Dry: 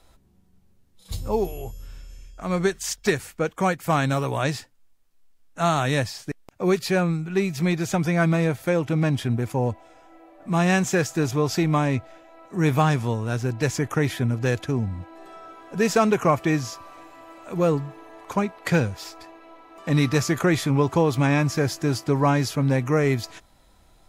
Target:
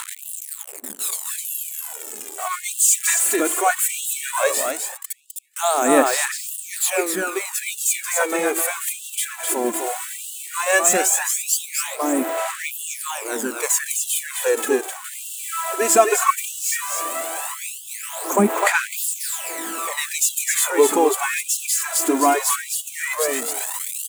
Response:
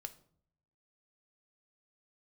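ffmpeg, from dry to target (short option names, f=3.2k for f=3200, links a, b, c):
-filter_complex "[0:a]aeval=exprs='val(0)+0.5*0.0376*sgn(val(0))':c=same,highshelf=f=6.5k:t=q:w=3:g=7.5,asplit=2[a][b];[b]aecho=0:1:257:0.562[c];[a][c]amix=inputs=2:normalize=0,aphaser=in_gain=1:out_gain=1:delay=3:decay=0.61:speed=0.16:type=sinusoidal,asplit=2[d][e];[e]adelay=492,lowpass=f=3.2k:p=1,volume=-23.5dB,asplit=2[f][g];[g]adelay=492,lowpass=f=3.2k:p=1,volume=0.33[h];[f][h]amix=inputs=2:normalize=0[i];[d][i]amix=inputs=2:normalize=0,afftfilt=real='re*gte(b*sr/1024,210*pow(2700/210,0.5+0.5*sin(2*PI*0.8*pts/sr)))':imag='im*gte(b*sr/1024,210*pow(2700/210,0.5+0.5*sin(2*PI*0.8*pts/sr)))':win_size=1024:overlap=0.75,volume=1.5dB"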